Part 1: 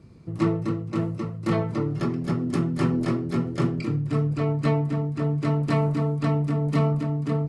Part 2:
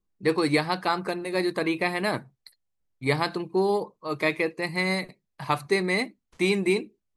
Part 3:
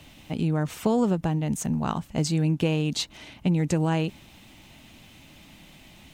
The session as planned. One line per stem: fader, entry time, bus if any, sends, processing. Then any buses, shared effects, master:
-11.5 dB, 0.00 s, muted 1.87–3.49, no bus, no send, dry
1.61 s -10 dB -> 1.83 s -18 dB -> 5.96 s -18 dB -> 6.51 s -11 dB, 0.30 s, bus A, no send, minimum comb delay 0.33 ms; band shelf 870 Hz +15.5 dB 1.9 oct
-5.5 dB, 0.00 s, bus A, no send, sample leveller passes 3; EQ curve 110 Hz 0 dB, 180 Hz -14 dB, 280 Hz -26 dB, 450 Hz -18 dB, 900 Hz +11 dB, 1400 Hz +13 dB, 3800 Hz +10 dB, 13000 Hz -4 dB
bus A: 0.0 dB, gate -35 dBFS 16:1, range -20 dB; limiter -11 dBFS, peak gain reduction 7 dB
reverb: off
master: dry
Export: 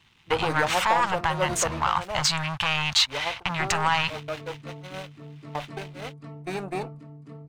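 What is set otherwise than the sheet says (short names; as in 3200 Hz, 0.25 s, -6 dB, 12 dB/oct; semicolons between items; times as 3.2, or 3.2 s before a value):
stem 1 -11.5 dB -> -18.5 dB; stem 2: entry 0.30 s -> 0.05 s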